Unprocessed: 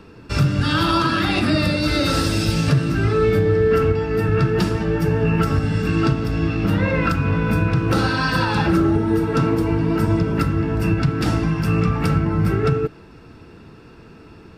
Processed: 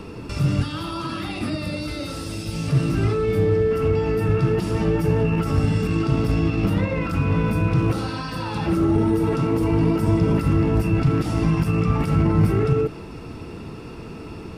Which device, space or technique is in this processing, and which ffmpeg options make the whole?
de-esser from a sidechain: -filter_complex "[0:a]equalizer=frequency=1600:width_type=o:width=0.33:gain=-9,equalizer=frequency=4000:width_type=o:width=0.33:gain=-3,equalizer=frequency=10000:width_type=o:width=0.33:gain=6,asplit=2[link_01][link_02];[link_02]highpass=frequency=6100:poles=1,apad=whole_len=642571[link_03];[link_01][link_03]sidechaincompress=threshold=-46dB:ratio=12:attack=0.61:release=29,volume=8dB"

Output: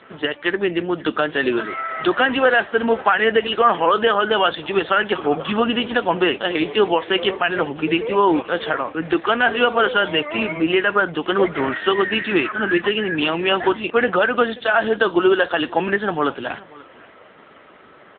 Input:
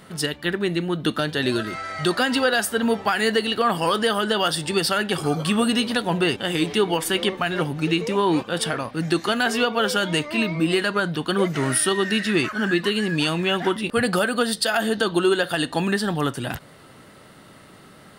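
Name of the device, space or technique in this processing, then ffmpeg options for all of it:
satellite phone: -af "highpass=350,lowpass=3200,aecho=1:1:533:0.0794,volume=7dB" -ar 8000 -c:a libopencore_amrnb -b:a 6700

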